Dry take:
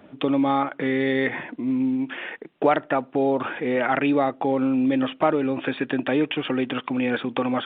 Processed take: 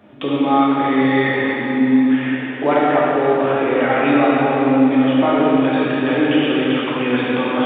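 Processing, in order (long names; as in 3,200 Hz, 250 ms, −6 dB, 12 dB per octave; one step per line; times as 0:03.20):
dense smooth reverb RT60 3.7 s, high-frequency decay 0.95×, DRR −7.5 dB
level −1 dB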